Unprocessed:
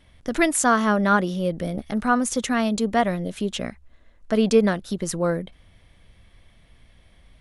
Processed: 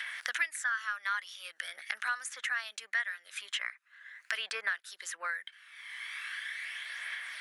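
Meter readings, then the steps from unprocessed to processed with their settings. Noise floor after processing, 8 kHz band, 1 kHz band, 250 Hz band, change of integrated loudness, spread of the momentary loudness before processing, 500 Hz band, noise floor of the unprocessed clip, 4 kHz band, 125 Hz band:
-68 dBFS, -13.5 dB, -16.5 dB, under -40 dB, -13.5 dB, 11 LU, -31.5 dB, -56 dBFS, -4.0 dB, under -40 dB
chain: phaser 0.42 Hz, delay 1 ms, feedback 39%; ladder high-pass 1500 Hz, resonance 60%; three-band squash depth 100%

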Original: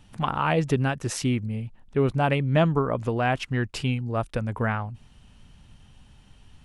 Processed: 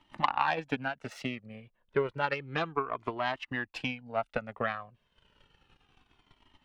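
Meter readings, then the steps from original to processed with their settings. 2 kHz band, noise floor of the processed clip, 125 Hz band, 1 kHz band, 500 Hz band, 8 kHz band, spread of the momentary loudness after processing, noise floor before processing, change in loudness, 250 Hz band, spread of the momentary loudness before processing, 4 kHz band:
-3.0 dB, -75 dBFS, -18.5 dB, -3.5 dB, -8.0 dB, under -15 dB, 9 LU, -54 dBFS, -8.0 dB, -12.5 dB, 8 LU, -5.0 dB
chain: self-modulated delay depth 0.087 ms; dynamic EQ 380 Hz, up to -6 dB, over -36 dBFS, Q 0.74; transient shaper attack +10 dB, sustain -7 dB; three-band isolator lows -20 dB, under 250 Hz, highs -18 dB, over 4100 Hz; cascading flanger falling 0.31 Hz

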